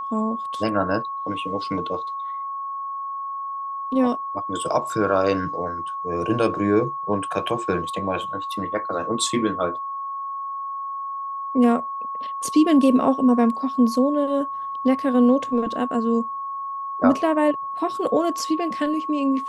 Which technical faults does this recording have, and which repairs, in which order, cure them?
whine 1.1 kHz -27 dBFS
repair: band-stop 1.1 kHz, Q 30

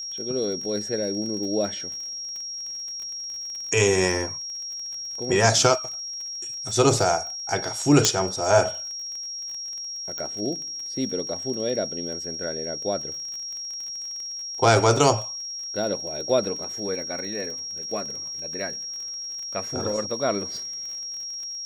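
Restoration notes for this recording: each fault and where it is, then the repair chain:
crackle 32 per s -33 dBFS
whine 5.6 kHz -31 dBFS
8.05 s: pop -1 dBFS
10.18 s: pop -17 dBFS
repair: de-click; band-stop 5.6 kHz, Q 30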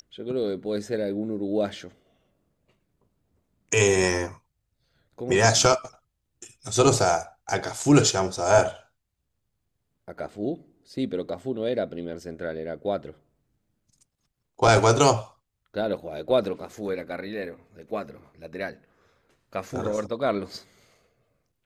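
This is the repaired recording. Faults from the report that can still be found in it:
8.05 s: pop

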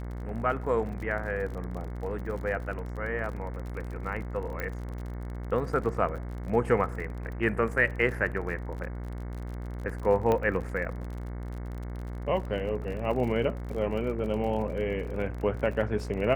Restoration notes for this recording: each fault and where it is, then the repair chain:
buzz 60 Hz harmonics 37 -36 dBFS
crackle 43 per s -37 dBFS
4.60 s: pop -19 dBFS
10.32 s: pop -15 dBFS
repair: de-click; de-hum 60 Hz, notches 37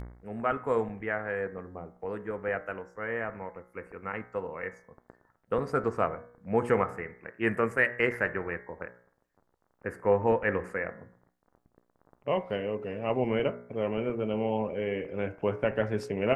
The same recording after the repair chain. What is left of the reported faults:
nothing left

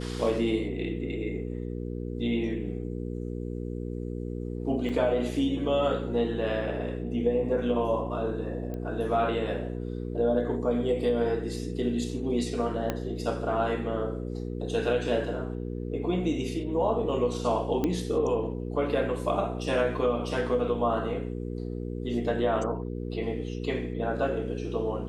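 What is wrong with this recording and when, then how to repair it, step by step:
hum 60 Hz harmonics 8 -34 dBFS
4.89 s: dropout 4.5 ms
8.74 s: pop -25 dBFS
12.90 s: pop -14 dBFS
17.84 s: pop -15 dBFS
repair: de-click; de-hum 60 Hz, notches 8; interpolate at 4.89 s, 4.5 ms

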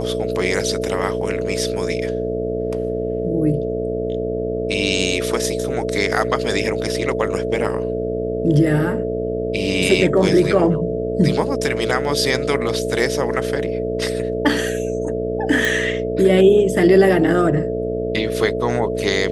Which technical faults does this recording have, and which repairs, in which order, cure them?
buzz 60 Hz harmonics 11 -25 dBFS
whine 440 Hz -23 dBFS
15.65 s: pop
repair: de-click; de-hum 60 Hz, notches 11; band-stop 440 Hz, Q 30

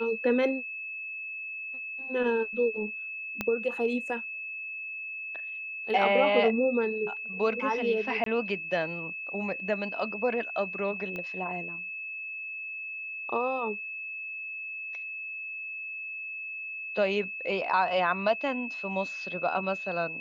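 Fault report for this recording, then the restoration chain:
whine 2.6 kHz -35 dBFS
3.41 s: pop -15 dBFS
8.24–8.26 s: dropout 23 ms
11.16 s: pop -24 dBFS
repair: de-click; band-stop 2.6 kHz, Q 30; interpolate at 8.24 s, 23 ms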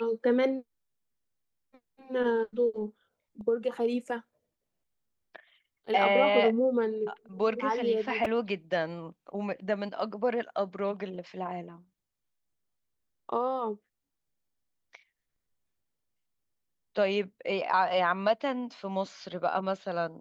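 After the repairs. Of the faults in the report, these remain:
3.41 s: pop
11.16 s: pop

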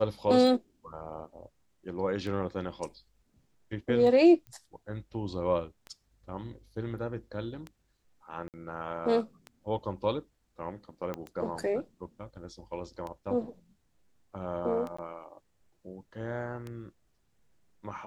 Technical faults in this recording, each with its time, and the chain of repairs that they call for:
tick 33 1/3 rpm
4.47 s: pop -32 dBFS
8.48–8.54 s: dropout 58 ms
11.14 s: pop -22 dBFS
14.97–14.98 s: dropout 15 ms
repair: de-click; interpolate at 8.48 s, 58 ms; interpolate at 14.97 s, 15 ms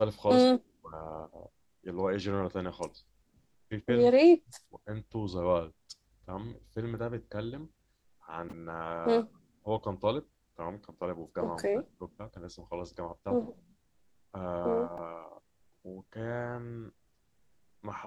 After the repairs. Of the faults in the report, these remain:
11.14 s: pop

